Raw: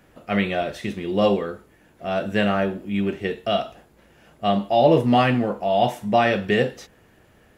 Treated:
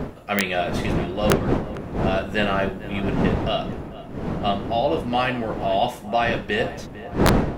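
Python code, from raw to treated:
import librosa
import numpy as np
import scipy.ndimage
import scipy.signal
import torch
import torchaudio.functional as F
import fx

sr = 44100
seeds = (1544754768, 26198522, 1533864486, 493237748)

p1 = fx.dmg_wind(x, sr, seeds[0], corner_hz=240.0, level_db=-17.0)
p2 = fx.low_shelf(p1, sr, hz=420.0, db=-10.0)
p3 = fx.rider(p2, sr, range_db=4, speed_s=0.5)
p4 = (np.mod(10.0 ** (7.0 / 20.0) * p3 + 1.0, 2.0) - 1.0) / 10.0 ** (7.0 / 20.0)
y = p4 + fx.echo_filtered(p4, sr, ms=450, feedback_pct=60, hz=1900.0, wet_db=-15.0, dry=0)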